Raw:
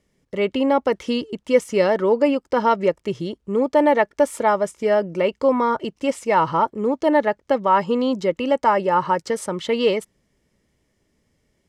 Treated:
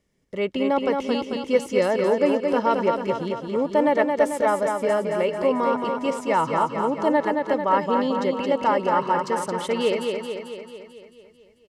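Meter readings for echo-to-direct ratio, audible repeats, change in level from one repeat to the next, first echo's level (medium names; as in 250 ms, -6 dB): -2.5 dB, 7, -4.5 dB, -4.5 dB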